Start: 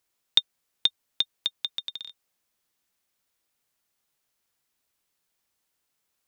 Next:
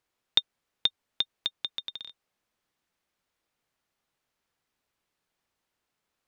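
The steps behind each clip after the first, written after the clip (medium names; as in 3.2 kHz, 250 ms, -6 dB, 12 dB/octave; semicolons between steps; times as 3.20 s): low-pass 2.4 kHz 6 dB/octave; trim +2.5 dB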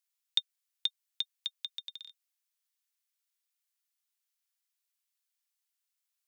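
differentiator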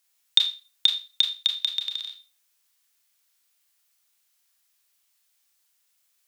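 in parallel at +0.5 dB: peak limiter -20 dBFS, peak gain reduction 7.5 dB; on the sum: Schroeder reverb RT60 0.32 s, combs from 27 ms, DRR 3 dB; trim +7 dB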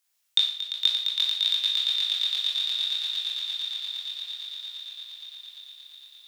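echo with a slow build-up 115 ms, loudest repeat 8, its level -7 dB; chorus 0.61 Hz, delay 18 ms, depth 3.6 ms; Schroeder reverb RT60 0.65 s, combs from 25 ms, DRR 7.5 dB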